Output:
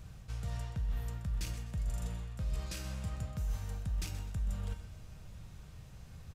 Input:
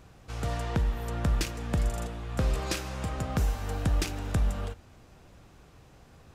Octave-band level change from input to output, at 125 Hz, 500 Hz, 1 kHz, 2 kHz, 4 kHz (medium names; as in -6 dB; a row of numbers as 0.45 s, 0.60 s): -7.0 dB, -16.0 dB, -15.5 dB, -12.5 dB, -10.0 dB